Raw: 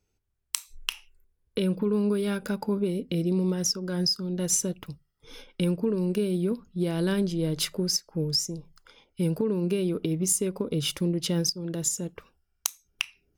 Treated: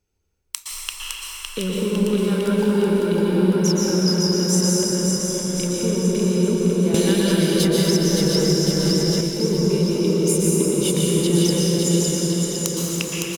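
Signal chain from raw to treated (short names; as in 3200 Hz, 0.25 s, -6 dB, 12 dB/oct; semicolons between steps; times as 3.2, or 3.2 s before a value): bouncing-ball echo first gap 0.56 s, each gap 0.9×, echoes 5; reverb RT60 5.2 s, pre-delay 0.108 s, DRR -5.5 dB; 6.94–9.21 three-band squash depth 100%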